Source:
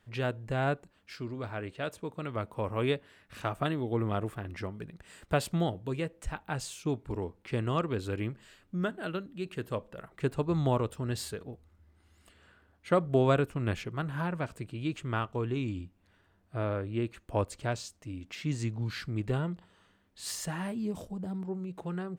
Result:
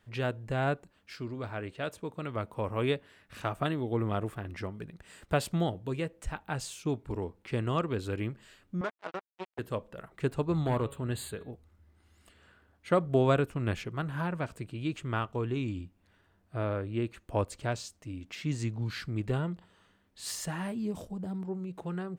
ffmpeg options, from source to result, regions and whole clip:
-filter_complex "[0:a]asettb=1/sr,asplit=3[a][b][c];[a]atrim=end=8.814[d];[b]atrim=start=8.81:end=9.59,asetpts=PTS-STARTPTS,afade=t=in:d=0.004:c=qsin,afade=t=out:st=0.776:d=0.004:c=qsin,acrusher=bits=4:mix=0:aa=0.5,bandpass=f=860:t=q:w=0.75,agate=range=-6dB:threshold=-53dB:ratio=16:release=100:detection=peak[e];[c]atrim=start=9.586[f];[d][e]acrossfade=d=0.004:c1=hsin:c2=qsin[g];[g][f]acrossfade=d=0.004:c1=qsin:c2=hsin,asettb=1/sr,asplit=3[h][i][j];[h]atrim=end=10.524[k];[i]atrim=start=10.52:end=11.51,asetpts=PTS-STARTPTS,afade=t=in:d=0.004:c=qsin,afade=t=out:st=0.986:d=0.004:c=qsin,bandreject=f=139.1:t=h:w=4,bandreject=f=278.2:t=h:w=4,bandreject=f=417.3:t=h:w=4,bandreject=f=556.4:t=h:w=4,bandreject=f=695.5:t=h:w=4,bandreject=f=834.6:t=h:w=4,bandreject=f=973.7:t=h:w=4,bandreject=f=1.1128k:t=h:w=4,bandreject=f=1.2519k:t=h:w=4,bandreject=f=1.391k:t=h:w=4,bandreject=f=1.5301k:t=h:w=4,bandreject=f=1.6692k:t=h:w=4,bandreject=f=1.8083k:t=h:w=4,bandreject=f=1.9474k:t=h:w=4,bandreject=f=2.0865k:t=h:w=4,bandreject=f=2.2256k:t=h:w=4,bandreject=f=2.3647k:t=h:w=4,bandreject=f=2.5038k:t=h:w=4,bandreject=f=2.6429k:t=h:w=4,bandreject=f=2.782k:t=h:w=4,bandreject=f=2.9211k:t=h:w=4,bandreject=f=3.0602k:t=h:w=4,bandreject=f=3.1993k:t=h:w=4,bandreject=f=3.3384k:t=h:w=4,bandreject=f=3.4775k:t=h:w=4,bandreject=f=3.6166k:t=h:w=4,bandreject=f=3.7557k:t=h:w=4,bandreject=f=3.8948k:t=h:w=4,bandreject=f=4.0339k:t=h:w=4,bandreject=f=4.173k:t=h:w=4,bandreject=f=4.3121k:t=h:w=4,volume=23.5dB,asoftclip=hard,volume=-23.5dB,asuperstop=centerf=5500:order=4:qfactor=2.1[l];[j]atrim=start=11.506[m];[k][l]acrossfade=d=0.004:c1=hsin:c2=qsin[n];[n][m]acrossfade=d=0.004:c1=qsin:c2=hsin"

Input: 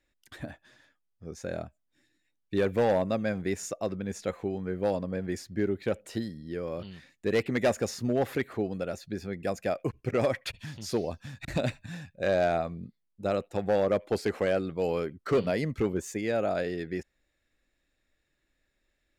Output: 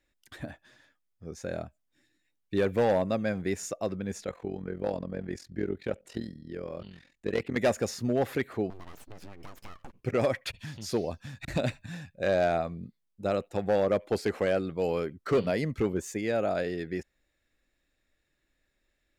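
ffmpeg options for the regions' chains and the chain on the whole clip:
-filter_complex "[0:a]asettb=1/sr,asplit=3[a][b][c];[a]atrim=end=4.244[d];[b]atrim=start=4.24:end=7.56,asetpts=PTS-STARTPTS,afade=t=in:d=0.004:c=qsin,afade=t=out:st=3.316:d=0.004:c=qsin,highshelf=f=10k:g=-9.5,tremolo=f=43:d=0.824[e];[c]atrim=start=7.556[f];[d][e]acrossfade=d=0.004:c1=hsin:c2=qsin[g];[g][f]acrossfade=d=0.004:c1=qsin:c2=hsin,asettb=1/sr,asplit=3[h][i][j];[h]atrim=end=8.704[k];[i]atrim=start=8.7:end=10.01,asetpts=PTS-STARTPTS,afade=t=in:d=0.004:c=qsin,afade=t=out:st=1.306:d=0.004:c=qsin,acompressor=threshold=-39dB:ratio=8:attack=3.2:release=140:knee=1:detection=peak,aeval=exprs='abs(val(0))':c=same[l];[j]atrim=start=10.006[m];[k][l]acrossfade=d=0.004:c1=hsin:c2=qsin[n];[n][m]acrossfade=d=0.004:c1=qsin:c2=hsin"

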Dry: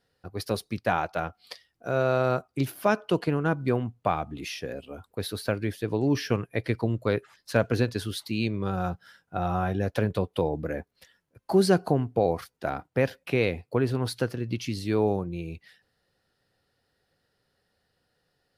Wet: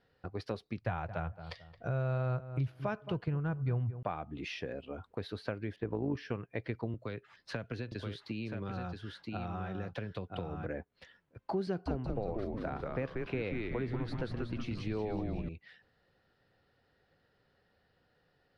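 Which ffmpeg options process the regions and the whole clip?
-filter_complex "[0:a]asettb=1/sr,asplit=3[a][b][c];[a]atrim=end=0.814[d];[b]atrim=start=0.81:end=4.03,asetpts=PTS-STARTPTS,afade=t=in:d=0.004:c=qsin,afade=t=out:st=3.216:d=0.004:c=qsin,lowshelf=f=170:t=q:w=1.5:g=11.5,asplit=2[e][f];[f]adelay=221,lowpass=f=1.4k:p=1,volume=-15.5dB,asplit=2[g][h];[h]adelay=221,lowpass=f=1.4k:p=1,volume=0.19[i];[e][g][i]amix=inputs=3:normalize=0,atrim=end_sample=142002[j];[c]atrim=start=4.026[k];[d][j]acrossfade=d=0.004:c1=hsin:c2=qsin[l];[l][k]acrossfade=d=0.004:c1=qsin:c2=hsin,asettb=1/sr,asplit=3[m][n][o];[m]atrim=end=5.764[p];[n]atrim=start=5.76:end=6.17,asetpts=PTS-STARTPTS,afade=t=in:d=0.004:c=qsin,afade=t=out:st=0.406:d=0.004:c=qsin,lowpass=1.8k,acontrast=61,tremolo=f=53:d=0.571[q];[o]atrim=start=6.166[r];[p][q]acrossfade=d=0.004:c1=hsin:c2=qsin[s];[s][r]acrossfade=d=0.004:c1=qsin:c2=hsin,asettb=1/sr,asplit=3[t][u][v];[t]atrim=end=6.944[w];[u]atrim=start=6.94:end=10.66,asetpts=PTS-STARTPTS,afade=t=in:d=0.004:c=qsin,afade=t=out:st=3.716:d=0.004:c=qsin,acrossover=split=240|1900[x][y][z];[x]acompressor=threshold=-34dB:ratio=4[aa];[y]acompressor=threshold=-37dB:ratio=4[ab];[z]acompressor=threshold=-39dB:ratio=4[ac];[aa][ab][ac]amix=inputs=3:normalize=0,aecho=1:1:976:0.501,atrim=end_sample=164052[ad];[v]atrim=start=10.656[ae];[w][ad]acrossfade=d=0.004:c1=hsin:c2=qsin[af];[af][ae]acrossfade=d=0.004:c1=qsin:c2=hsin,asettb=1/sr,asplit=3[ag][ah][ai];[ag]atrim=end=11.674[aj];[ah]atrim=start=11.67:end=15.49,asetpts=PTS-STARTPTS,afade=t=in:d=0.004:c=qsin,afade=t=out:st=3.816:d=0.004:c=qsin,acrossover=split=450|3000[ak][al][am];[al]acompressor=threshold=-24dB:ratio=6:attack=3.2:release=140:knee=2.83:detection=peak[an];[ak][an][am]amix=inputs=3:normalize=0,asplit=9[ao][ap][aq][ar][as][at][au][av][aw];[ap]adelay=185,afreqshift=-120,volume=-3dB[ax];[aq]adelay=370,afreqshift=-240,volume=-8.2dB[ay];[ar]adelay=555,afreqshift=-360,volume=-13.4dB[az];[as]adelay=740,afreqshift=-480,volume=-18.6dB[ba];[at]adelay=925,afreqshift=-600,volume=-23.8dB[bb];[au]adelay=1110,afreqshift=-720,volume=-29dB[bc];[av]adelay=1295,afreqshift=-840,volume=-34.2dB[bd];[aw]adelay=1480,afreqshift=-960,volume=-39.3dB[be];[ao][ax][ay][az][ba][bb][bc][bd][be]amix=inputs=9:normalize=0,atrim=end_sample=168462[bf];[ai]atrim=start=15.486[bg];[aj][bf]acrossfade=d=0.004:c1=hsin:c2=qsin[bh];[bh][bg]acrossfade=d=0.004:c1=qsin:c2=hsin,lowpass=3.1k,acompressor=threshold=-42dB:ratio=2.5,volume=2.5dB"

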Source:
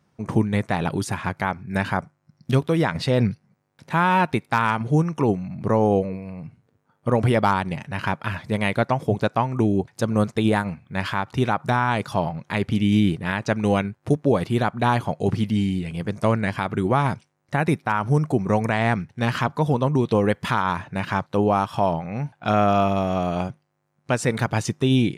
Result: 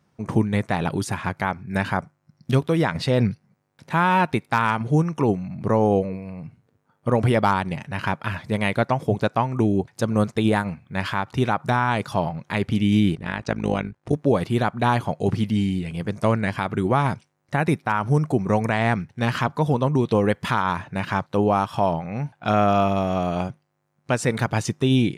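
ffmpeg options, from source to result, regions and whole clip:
-filter_complex "[0:a]asettb=1/sr,asplit=3[a][b][c];[a]atrim=end=13.154[d];[b]atrim=start=13.15:end=14.13,asetpts=PTS-STARTPTS,afade=t=in:d=0.004:c=qsin,afade=t=out:st=0.976:d=0.004:c=qsin,lowpass=8.2k,tremolo=f=53:d=0.788[e];[c]atrim=start=14.126[f];[d][e]acrossfade=d=0.004:c1=hsin:c2=qsin[g];[g][f]acrossfade=d=0.004:c1=qsin:c2=hsin"

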